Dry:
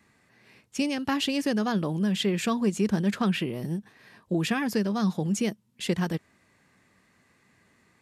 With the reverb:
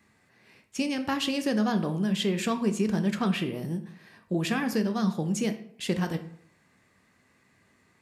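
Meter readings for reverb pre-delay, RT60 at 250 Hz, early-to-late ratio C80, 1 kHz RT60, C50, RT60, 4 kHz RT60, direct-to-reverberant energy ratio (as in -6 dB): 10 ms, 0.65 s, 15.0 dB, 0.65 s, 12.0 dB, 0.65 s, 0.45 s, 7.5 dB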